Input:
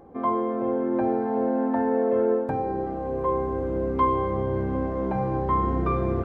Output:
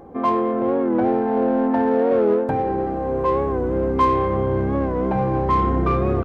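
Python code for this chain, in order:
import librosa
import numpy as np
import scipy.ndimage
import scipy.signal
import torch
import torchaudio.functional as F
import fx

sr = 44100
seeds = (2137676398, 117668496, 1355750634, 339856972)

p1 = 10.0 ** (-27.5 / 20.0) * np.tanh(x / 10.0 ** (-27.5 / 20.0))
p2 = x + F.gain(torch.from_numpy(p1), -5.0).numpy()
p3 = fx.record_warp(p2, sr, rpm=45.0, depth_cents=100.0)
y = F.gain(torch.from_numpy(p3), 3.0).numpy()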